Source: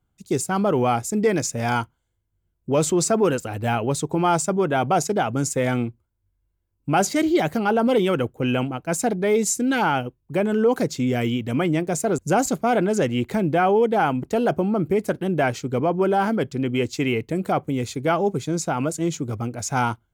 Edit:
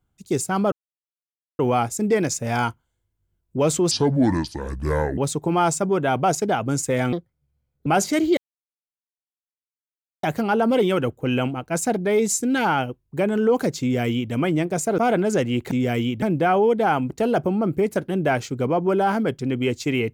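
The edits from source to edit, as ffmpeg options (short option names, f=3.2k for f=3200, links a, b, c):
-filter_complex "[0:a]asplit=10[a][b][c][d][e][f][g][h][i][j];[a]atrim=end=0.72,asetpts=PTS-STARTPTS,afade=t=out:st=0.716:d=0.004:c=hsin,apad=pad_dur=0.87[k];[b]atrim=start=0.72:end=3.044,asetpts=PTS-STARTPTS,afade=t=in:d=0.004:c=hsin[l];[c]atrim=start=3.04:end=3.85,asetpts=PTS-STARTPTS,asetrate=28224,aresample=44100,atrim=end_sample=55814,asetpts=PTS-STARTPTS[m];[d]atrim=start=3.846:end=5.804[n];[e]atrim=start=5.8:end=6.89,asetpts=PTS-STARTPTS,asetrate=65268,aresample=44100,atrim=end_sample=32479,asetpts=PTS-STARTPTS[o];[f]atrim=start=6.886:end=7.4,asetpts=PTS-STARTPTS,afade=t=out:st=0.51:d=0.004:c=hsin,apad=pad_dur=1.86[p];[g]atrim=start=7.4:end=12.152,asetpts=PTS-STARTPTS,afade=t=in:d=0.004:c=hsin[q];[h]atrim=start=12.618:end=13.352[r];[i]atrim=start=10.978:end=11.492[s];[j]atrim=start=13.348[t];[k][l]concat=n=2:v=0:a=1[u];[u][m]acrossfade=d=0.004:c1=hsin:c2=hsin[v];[v][n]acrossfade=d=0.004:c1=hsin:c2=hsin[w];[w][o]acrossfade=d=0.004:c1=hsin:c2=hsin[x];[p][q]concat=n=2:v=0:a=1[y];[x][y]acrossfade=d=0.004:c1=hsin:c2=hsin[z];[z][r]acrossfade=d=0.004:c1=hsin:c2=hsin[aa];[aa][s]acrossfade=d=0.004:c1=hsin:c2=hsin[ab];[ab][t]acrossfade=d=0.004:c1=hsin:c2=hsin"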